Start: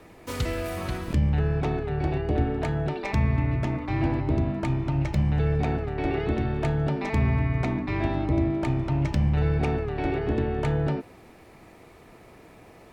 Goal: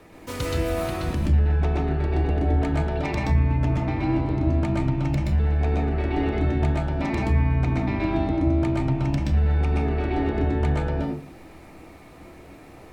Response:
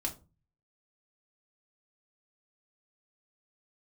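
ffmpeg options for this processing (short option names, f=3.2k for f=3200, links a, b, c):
-filter_complex "[0:a]acompressor=threshold=-24dB:ratio=6,asplit=2[a][b];[1:a]atrim=start_sample=2205,adelay=124[c];[b][c]afir=irnorm=-1:irlink=0,volume=-0.5dB[d];[a][d]amix=inputs=2:normalize=0"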